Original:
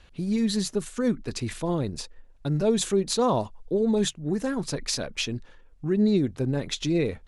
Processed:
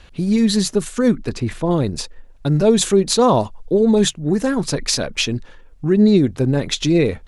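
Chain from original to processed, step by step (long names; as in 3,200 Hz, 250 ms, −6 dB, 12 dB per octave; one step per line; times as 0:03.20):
0:01.29–0:01.71: high-shelf EQ 2,700 Hz −11.5 dB
level +9 dB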